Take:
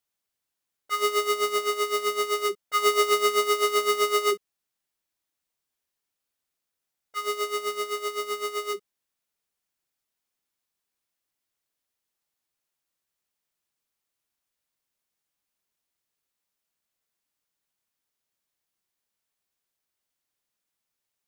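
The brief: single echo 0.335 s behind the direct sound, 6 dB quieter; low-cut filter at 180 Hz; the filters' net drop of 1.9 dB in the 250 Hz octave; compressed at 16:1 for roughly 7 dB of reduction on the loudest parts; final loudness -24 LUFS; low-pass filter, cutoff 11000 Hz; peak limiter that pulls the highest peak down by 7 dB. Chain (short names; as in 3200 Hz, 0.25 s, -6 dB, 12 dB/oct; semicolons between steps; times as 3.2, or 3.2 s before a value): HPF 180 Hz; LPF 11000 Hz; bell 250 Hz -5 dB; compressor 16:1, threshold -26 dBFS; limiter -24.5 dBFS; echo 0.335 s -6 dB; gain +8 dB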